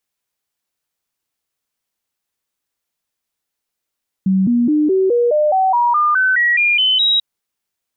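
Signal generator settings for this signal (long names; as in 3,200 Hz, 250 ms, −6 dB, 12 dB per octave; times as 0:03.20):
stepped sweep 190 Hz up, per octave 3, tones 14, 0.21 s, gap 0.00 s −11 dBFS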